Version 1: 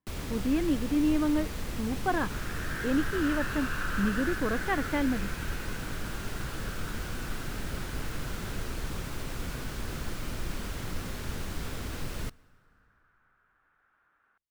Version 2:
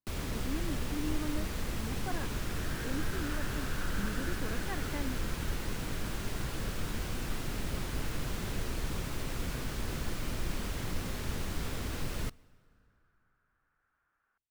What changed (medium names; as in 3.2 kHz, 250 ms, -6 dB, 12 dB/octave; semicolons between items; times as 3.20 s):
speech -12.0 dB; second sound -9.0 dB